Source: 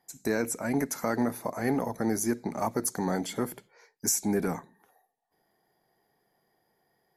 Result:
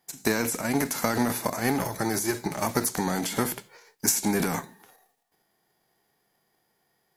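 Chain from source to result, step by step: formants flattened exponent 0.6; transient shaper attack +6 dB, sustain +10 dB; 1.78–2.65 s: comb of notches 240 Hz

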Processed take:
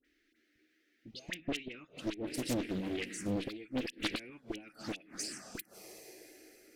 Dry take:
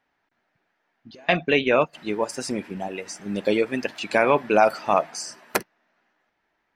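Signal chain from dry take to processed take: graphic EQ with 31 bands 100 Hz -10 dB, 160 Hz -7 dB, 315 Hz +10 dB, 630 Hz -7 dB, 1 kHz -11 dB, 2 kHz +4 dB; plate-style reverb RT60 4.4 s, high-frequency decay 0.8×, DRR 18 dB; inverted gate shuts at -11 dBFS, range -25 dB; in parallel at -1 dB: compression, threshold -41 dBFS, peak gain reduction 21 dB; on the sum: touch-sensitive phaser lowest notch 150 Hz, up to 1.2 kHz, full sweep at -27 dBFS; valve stage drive 26 dB, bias 0.25; peaking EQ 840 Hz -14 dB 1.7 oct; phase dispersion highs, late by 48 ms, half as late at 1.4 kHz; loudspeaker Doppler distortion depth 0.72 ms; trim +1 dB

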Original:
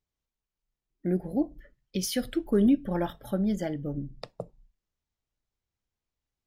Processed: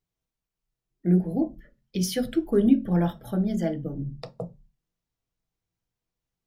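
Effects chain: de-hum 72.54 Hz, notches 3; on a send: reverberation RT60 0.20 s, pre-delay 3 ms, DRR 6 dB

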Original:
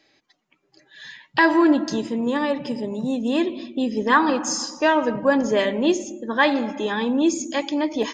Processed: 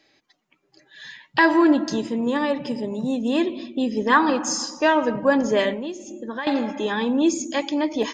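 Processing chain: 5.73–6.47 s: compression 8:1, threshold -28 dBFS, peak gain reduction 15 dB

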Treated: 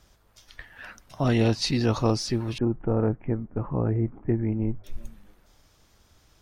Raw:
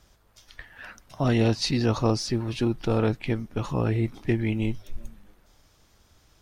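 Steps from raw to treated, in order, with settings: 2.58–4.84 s: Gaussian low-pass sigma 6 samples

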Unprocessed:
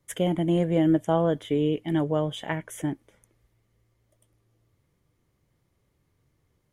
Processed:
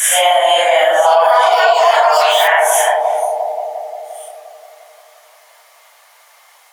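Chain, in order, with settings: phase randomisation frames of 200 ms; 0.69–2.81 s: ever faster or slower copies 371 ms, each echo +7 st, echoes 2, each echo -6 dB; steep high-pass 660 Hz 48 dB/octave; bucket-brigade echo 175 ms, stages 1024, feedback 73%, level -4.5 dB; compression 2:1, threshold -46 dBFS, peak gain reduction 12.5 dB; loudness maximiser +34 dB; trim -1 dB

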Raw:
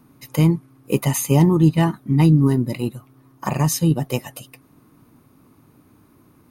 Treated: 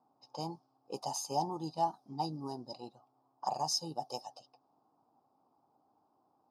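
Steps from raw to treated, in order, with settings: two resonant band-passes 2 kHz, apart 2.7 oct; level-controlled noise filter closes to 1.8 kHz, open at -35.5 dBFS

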